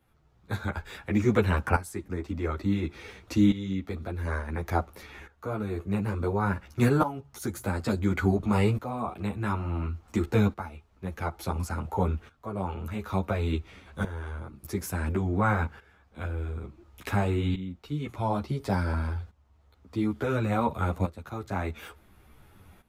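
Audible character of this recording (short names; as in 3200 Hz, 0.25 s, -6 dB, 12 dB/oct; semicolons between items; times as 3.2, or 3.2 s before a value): tremolo saw up 0.57 Hz, depth 80%; a shimmering, thickened sound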